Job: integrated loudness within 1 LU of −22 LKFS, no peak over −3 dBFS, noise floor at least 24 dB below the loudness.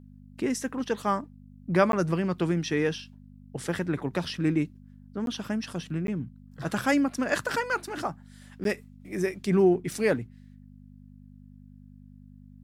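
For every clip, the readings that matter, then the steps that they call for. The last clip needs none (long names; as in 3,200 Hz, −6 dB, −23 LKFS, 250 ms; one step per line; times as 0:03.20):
number of dropouts 4; longest dropout 12 ms; mains hum 50 Hz; hum harmonics up to 250 Hz; level of the hum −49 dBFS; integrated loudness −28.5 LKFS; sample peak −8.5 dBFS; target loudness −22.0 LKFS
→ repair the gap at 0:01.92/0:05.26/0:06.07/0:08.64, 12 ms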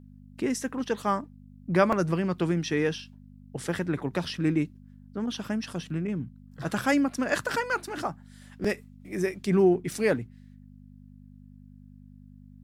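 number of dropouts 0; mains hum 50 Hz; hum harmonics up to 250 Hz; level of the hum −48 dBFS
→ hum removal 50 Hz, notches 5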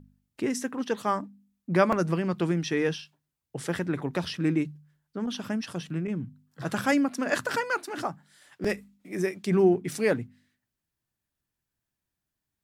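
mains hum none found; integrated loudness −28.5 LKFS; sample peak −8.5 dBFS; target loudness −22.0 LKFS
→ level +6.5 dB
brickwall limiter −3 dBFS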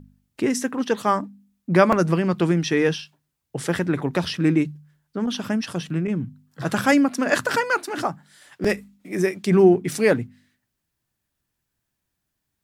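integrated loudness −22.0 LKFS; sample peak −3.0 dBFS; background noise floor −79 dBFS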